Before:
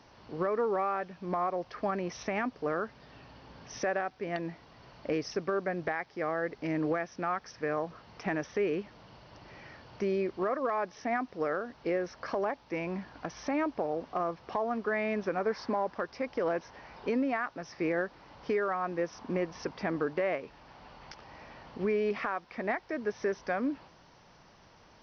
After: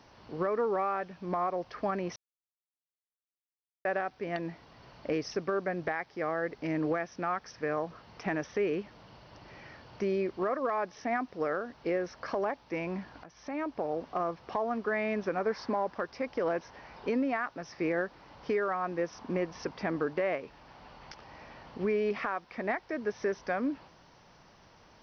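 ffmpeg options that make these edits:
-filter_complex "[0:a]asplit=4[a][b][c][d];[a]atrim=end=2.16,asetpts=PTS-STARTPTS,afade=t=out:st=2.156:d=0.004:c=hsin[e];[b]atrim=start=2.16:end=3.85,asetpts=PTS-STARTPTS,volume=0[f];[c]atrim=start=3.85:end=13.24,asetpts=PTS-STARTPTS,afade=t=in:d=0.004:c=hsin,afade=t=out:st=9.386:d=0.004:c=hsin:silence=0.158489[g];[d]atrim=start=13.24,asetpts=PTS-STARTPTS,afade=t=in:d=0.69:silence=0.158489[h];[e][f][g][h]concat=n=4:v=0:a=1"

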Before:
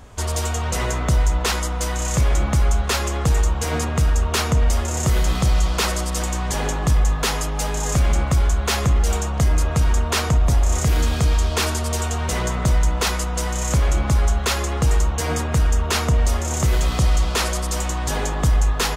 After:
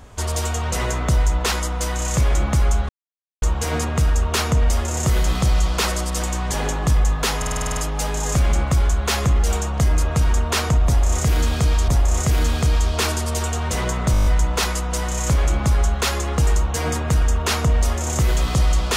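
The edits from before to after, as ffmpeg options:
-filter_complex "[0:a]asplit=19[a][b][c][d][e][f][g][h][i][j][k][l][m][n][o][p][q][r][s];[a]atrim=end=2.89,asetpts=PTS-STARTPTS,afade=t=out:st=2.886:d=0.004:c=hsin[t];[b]atrim=start=2.89:end=3.42,asetpts=PTS-STARTPTS,volume=0[u];[c]atrim=start=3.42:end=7.422,asetpts=PTS-STARTPTS,afade=t=in:d=0.004:c=hsin[v];[d]atrim=start=7.368:end=7.422[w];[e]atrim=start=7.368:end=7.422[x];[f]atrim=start=7.368:end=7.422[y];[g]atrim=start=7.368:end=7.422[z];[h]atrim=start=7.368:end=7.422[aa];[i]atrim=start=7.368:end=7.422[ab];[j]atrim=start=7.368:end=7.422[ac];[k]atrim=start=7.368:end=11.482[ad];[l]atrim=start=10.458:end=12.722[ae];[m]atrim=start=12.698:end=12.722[af];[n]atrim=start=12.698:end=12.722[ag];[o]atrim=start=12.698:end=12.722[ah];[p]atrim=start=12.698:end=12.722[ai];[q]atrim=start=12.698:end=12.722[aj];[r]atrim=start=12.698:end=12.722[ak];[s]atrim=start=12.698[al];[t][u][v]concat=n=3:v=0:a=1[am];[am][w]acrossfade=d=0.004:c1=hsin:c2=hsin[an];[an][x]acrossfade=d=0.004:c1=hsin:c2=hsin[ao];[ao][y]acrossfade=d=0.004:c1=hsin:c2=hsin[ap];[ap][z]acrossfade=d=0.004:c1=hsin:c2=hsin[aq];[aq][aa]acrossfade=d=0.004:c1=hsin:c2=hsin[ar];[ar][ab]acrossfade=d=0.004:c1=hsin:c2=hsin[as];[as][ac]acrossfade=d=0.004:c1=hsin:c2=hsin[at];[at][ad]acrossfade=d=0.004:c1=hsin:c2=hsin[au];[au][ae]acrossfade=d=0.004:c1=hsin:c2=hsin[av];[av][af]acrossfade=d=0.004:c1=hsin:c2=hsin[aw];[aw][ag]acrossfade=d=0.004:c1=hsin:c2=hsin[ax];[ax][ah]acrossfade=d=0.004:c1=hsin:c2=hsin[ay];[ay][ai]acrossfade=d=0.004:c1=hsin:c2=hsin[az];[az][aj]acrossfade=d=0.004:c1=hsin:c2=hsin[ba];[ba][ak]acrossfade=d=0.004:c1=hsin:c2=hsin[bb];[bb][al]acrossfade=d=0.004:c1=hsin:c2=hsin"

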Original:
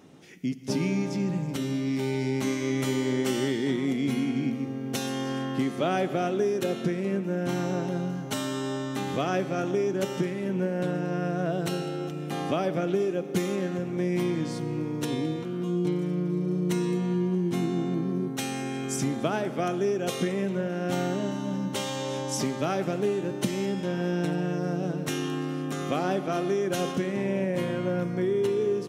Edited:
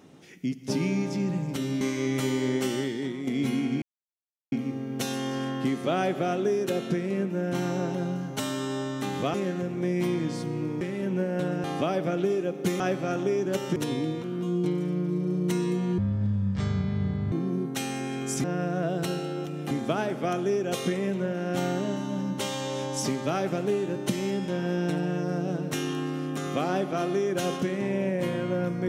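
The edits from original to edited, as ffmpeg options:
-filter_complex "[0:a]asplit=13[a][b][c][d][e][f][g][h][i][j][k][l][m];[a]atrim=end=1.812[n];[b]atrim=start=2.448:end=3.91,asetpts=PTS-STARTPTS,afade=t=out:st=0.722:d=0.74:silence=0.398107[o];[c]atrim=start=3.91:end=4.46,asetpts=PTS-STARTPTS,afade=t=in:d=0.004:c=hsin:silence=0.398107,afade=t=out:st=0.546:d=0.004:c=hsin,apad=pad_dur=0.7[p];[d]atrim=start=4.46:end=9.282,asetpts=PTS-STARTPTS,afade=t=in:d=0.004:c=hsin[q];[e]atrim=start=13.498:end=14.972[r];[f]atrim=start=10.238:end=11.072[s];[g]atrim=start=12.338:end=13.502[t];[h]atrim=start=9.278:end=10.242[u];[i]atrim=start=14.968:end=17.194[v];[j]atrim=start=17.19:end=17.94,asetpts=PTS-STARTPTS,asetrate=24696,aresample=44100,atrim=end_sample=59062,asetpts=PTS-STARTPTS[w];[k]atrim=start=17.936:end=19.062[x];[l]atrim=start=11.068:end=12.342[y];[m]atrim=start=19.058[z];[o][p][q]concat=n=3:v=0:a=1[aa];[n][aa]acrossfade=d=0.004:c1=hsin:c2=hsin[ab];[ab][r]acrossfade=d=0.004:c1=hsin:c2=hsin[ac];[ac][s]acrossfade=d=0.004:c1=hsin:c2=hsin[ad];[ad][t]acrossfade=d=0.004:c1=hsin:c2=hsin[ae];[ae][u]acrossfade=d=0.004:c1=hsin:c2=hsin[af];[af][v]acrossfade=d=0.004:c1=hsin:c2=hsin[ag];[ag][w]acrossfade=d=0.004:c1=hsin:c2=hsin[ah];[ah][x]acrossfade=d=0.004:c1=hsin:c2=hsin[ai];[ai][y]acrossfade=d=0.004:c1=hsin:c2=hsin[aj];[aj][z]acrossfade=d=0.004:c1=hsin:c2=hsin"

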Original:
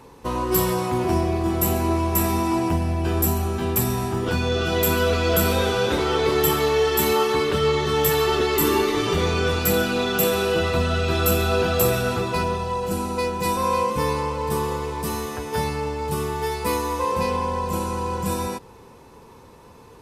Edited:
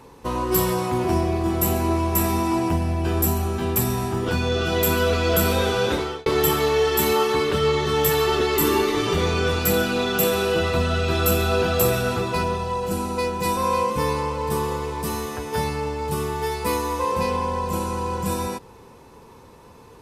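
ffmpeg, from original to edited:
-filter_complex "[0:a]asplit=2[a][b];[a]atrim=end=6.26,asetpts=PTS-STARTPTS,afade=t=out:st=5.91:d=0.35[c];[b]atrim=start=6.26,asetpts=PTS-STARTPTS,afade=t=in:d=0.004:c=hsin[d];[c][d]concat=n=2:v=0:a=1"

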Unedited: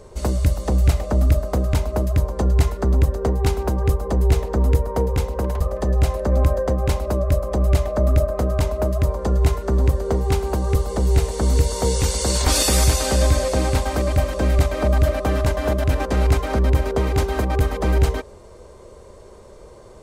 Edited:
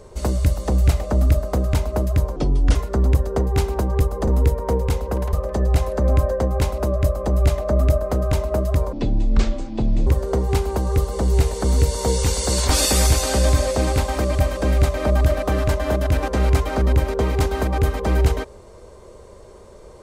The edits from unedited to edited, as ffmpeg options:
-filter_complex "[0:a]asplit=6[a][b][c][d][e][f];[a]atrim=end=2.364[g];[b]atrim=start=2.36:end=2.64,asetpts=PTS-STARTPTS,asetrate=31311,aresample=44100[h];[c]atrim=start=2.636:end=4.162[i];[d]atrim=start=4.548:end=9.204[j];[e]atrim=start=9.2:end=9.84,asetpts=PTS-STARTPTS,asetrate=24696,aresample=44100[k];[f]atrim=start=9.836[l];[g][h]acrossfade=d=0.004:c1=hsin:c2=hsin[m];[m][i]acrossfade=d=0.004:c1=hsin:c2=hsin[n];[n][j]acrossfade=d=0.004:c1=hsin:c2=hsin[o];[o][k]acrossfade=d=0.004:c1=hsin:c2=hsin[p];[p][l]acrossfade=d=0.004:c1=hsin:c2=hsin"

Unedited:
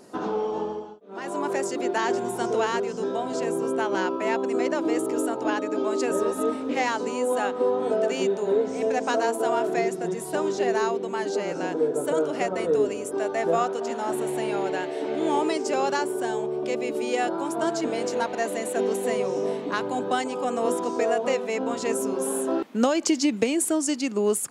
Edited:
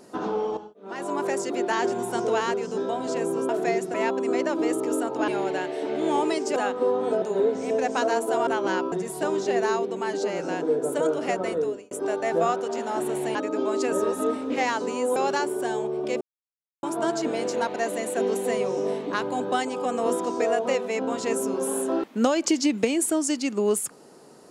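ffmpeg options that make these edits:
-filter_complex "[0:a]asplit=14[a][b][c][d][e][f][g][h][i][j][k][l][m][n];[a]atrim=end=0.572[o];[b]atrim=start=0.828:end=3.752[p];[c]atrim=start=9.588:end=10.042[q];[d]atrim=start=4.198:end=5.542[r];[e]atrim=start=14.468:end=15.752[s];[f]atrim=start=7.348:end=8.012[t];[g]atrim=start=8.338:end=9.592[u];[h]atrim=start=3.748:end=4.202[v];[i]atrim=start=10.038:end=13.03,asetpts=PTS-STARTPTS,afade=t=out:st=2.542:d=0.45[w];[j]atrim=start=13.03:end=14.472,asetpts=PTS-STARTPTS,afade=t=in:d=0.004:c=hsin[x];[k]atrim=start=5.538:end=7.352[y];[l]atrim=start=15.748:end=16.8,asetpts=PTS-STARTPTS,afade=t=out:st=1.048:d=0.004:c=hsin[z];[m]atrim=start=16.8:end=17.42,asetpts=PTS-STARTPTS,volume=0[aa];[n]atrim=start=17.42,asetpts=PTS-STARTPTS,afade=t=in:d=0.004:c=hsin[ab];[o][p]acrossfade=d=0.004:c1=hsin:c2=hsin[ac];[ac][q]acrossfade=d=0.004:c1=hsin:c2=hsin[ad];[ad][r]acrossfade=d=0.004:c1=hsin:c2=hsin[ae];[ae][s]acrossfade=d=0.004:c1=hsin:c2=hsin[af];[af][t]acrossfade=d=0.004:c1=hsin:c2=hsin[ag];[ag][u]acrossfade=d=0.004:c1=hsin:c2=hsin[ah];[ah][v]acrossfade=d=0.004:c1=hsin:c2=hsin[ai];[w][x]concat=n=2:v=0:a=1[aj];[ai][aj]acrossfade=d=0.004:c1=hsin:c2=hsin[ak];[ak][y]acrossfade=d=0.004:c1=hsin:c2=hsin[al];[z][aa][ab]concat=n=3:v=0:a=1[am];[al][am]acrossfade=d=0.004:c1=hsin:c2=hsin"

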